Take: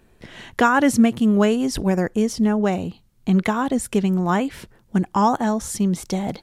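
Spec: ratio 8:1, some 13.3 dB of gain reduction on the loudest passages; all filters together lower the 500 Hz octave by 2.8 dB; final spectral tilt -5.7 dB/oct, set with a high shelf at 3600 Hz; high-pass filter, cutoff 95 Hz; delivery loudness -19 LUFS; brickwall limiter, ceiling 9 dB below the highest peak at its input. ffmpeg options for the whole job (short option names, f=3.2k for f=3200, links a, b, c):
-af "highpass=95,equalizer=f=500:t=o:g=-3.5,highshelf=f=3.6k:g=-6.5,acompressor=threshold=-25dB:ratio=8,volume=12.5dB,alimiter=limit=-10dB:level=0:latency=1"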